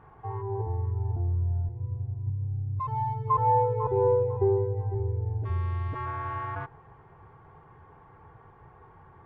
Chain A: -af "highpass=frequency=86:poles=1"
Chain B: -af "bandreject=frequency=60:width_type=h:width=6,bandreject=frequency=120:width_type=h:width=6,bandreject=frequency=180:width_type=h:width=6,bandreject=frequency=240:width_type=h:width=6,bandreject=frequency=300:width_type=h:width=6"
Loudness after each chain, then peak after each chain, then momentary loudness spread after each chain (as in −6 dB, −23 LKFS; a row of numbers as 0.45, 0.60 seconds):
−30.0, −29.0 LKFS; −14.0, −14.0 dBFS; 12, 10 LU